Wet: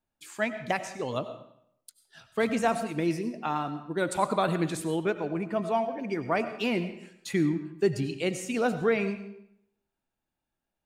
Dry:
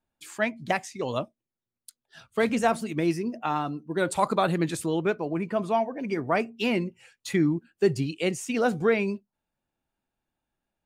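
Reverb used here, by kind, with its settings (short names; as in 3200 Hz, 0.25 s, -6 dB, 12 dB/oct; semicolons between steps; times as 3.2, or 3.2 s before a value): digital reverb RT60 0.73 s, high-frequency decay 0.85×, pre-delay 55 ms, DRR 10.5 dB; gain -2.5 dB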